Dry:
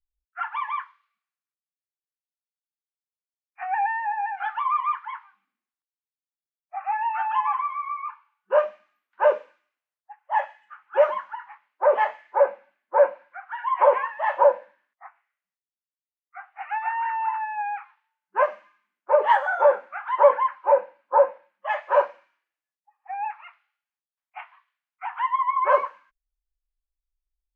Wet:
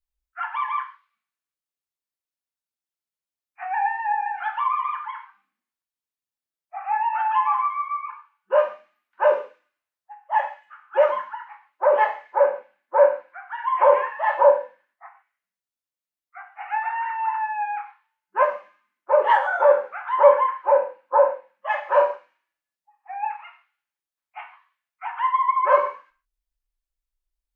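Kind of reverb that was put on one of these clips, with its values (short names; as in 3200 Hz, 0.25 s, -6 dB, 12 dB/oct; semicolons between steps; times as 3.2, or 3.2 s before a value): non-linear reverb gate 0.17 s falling, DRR 4 dB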